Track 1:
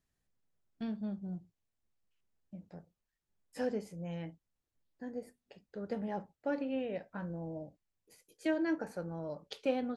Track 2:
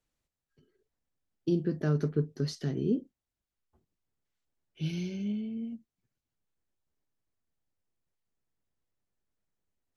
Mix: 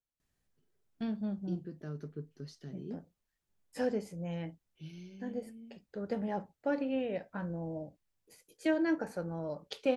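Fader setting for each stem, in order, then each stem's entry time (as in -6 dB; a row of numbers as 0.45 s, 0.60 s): +2.5 dB, -14.0 dB; 0.20 s, 0.00 s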